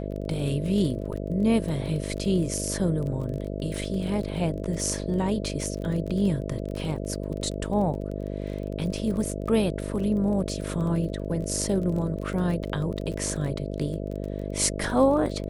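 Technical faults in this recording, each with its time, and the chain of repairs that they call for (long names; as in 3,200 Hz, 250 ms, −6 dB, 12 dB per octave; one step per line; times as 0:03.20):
mains buzz 50 Hz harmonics 13 −32 dBFS
surface crackle 23 per second −32 dBFS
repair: click removal
hum removal 50 Hz, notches 13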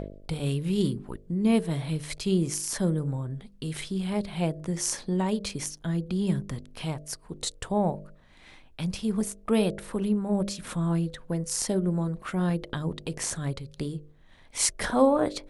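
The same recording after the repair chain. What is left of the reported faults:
none of them is left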